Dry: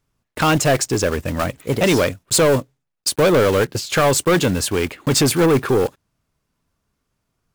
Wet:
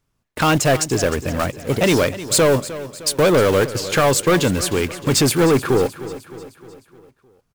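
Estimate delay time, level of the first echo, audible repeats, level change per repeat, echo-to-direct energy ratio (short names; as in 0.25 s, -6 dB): 0.307 s, -15.0 dB, 4, -5.5 dB, -13.5 dB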